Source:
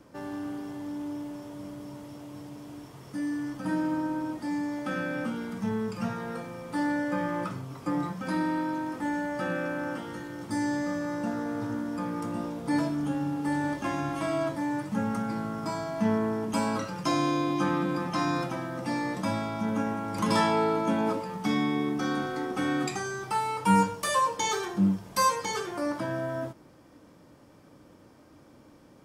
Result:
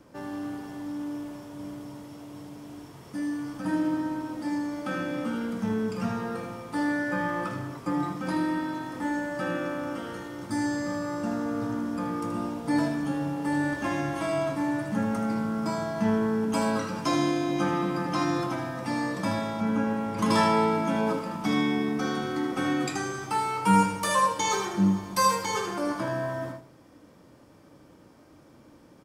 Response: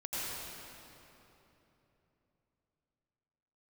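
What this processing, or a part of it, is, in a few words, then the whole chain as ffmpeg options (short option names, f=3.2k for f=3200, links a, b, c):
keyed gated reverb: -filter_complex "[0:a]asettb=1/sr,asplit=3[a][b][c];[a]atrim=end=19.604[d];[b]atrim=start=19.6:end=20.19,asetpts=PTS-STARTPTS,afade=t=in:d=0.004:c=qsin,afade=t=out:st=0.586:d=0.004:c=qsin,acrossover=split=3600[e][f];[f]acompressor=threshold=-57dB:ratio=4:attack=1:release=60[g];[e][g]amix=inputs=2:normalize=0[h];[c]atrim=start=20.186[i];[d][h]acrossfade=d=0.004:c1=hsin:c2=qsin[j];[j][i]acrossfade=d=0.004:c1=qsin:c2=hsin,aecho=1:1:78|156|234|312:0.398|0.123|0.0383|0.0119,asplit=3[k][l][m];[1:a]atrim=start_sample=2205[n];[l][n]afir=irnorm=-1:irlink=0[o];[m]apad=whole_len=1294664[p];[o][p]sidechaingate=range=-33dB:threshold=-40dB:ratio=16:detection=peak,volume=-14.5dB[q];[k][q]amix=inputs=2:normalize=0"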